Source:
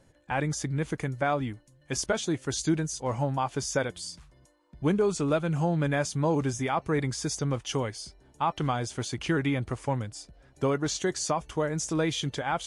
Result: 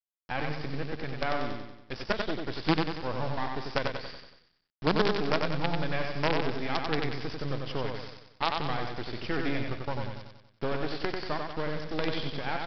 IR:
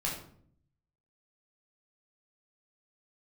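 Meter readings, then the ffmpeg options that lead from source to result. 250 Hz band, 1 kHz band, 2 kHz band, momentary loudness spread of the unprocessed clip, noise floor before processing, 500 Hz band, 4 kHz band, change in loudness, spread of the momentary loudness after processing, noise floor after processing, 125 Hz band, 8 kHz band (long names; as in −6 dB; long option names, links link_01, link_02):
−4.0 dB, −1.5 dB, +1.0 dB, 7 LU, −61 dBFS, −3.0 dB, +0.5 dB, −3.0 dB, 9 LU, −68 dBFS, −6.0 dB, below −25 dB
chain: -af "aresample=11025,acrusher=bits=4:dc=4:mix=0:aa=0.000001,aresample=44100,aecho=1:1:93|186|279|372|465|558:0.631|0.309|0.151|0.0742|0.0364|0.0178,volume=-1.5dB"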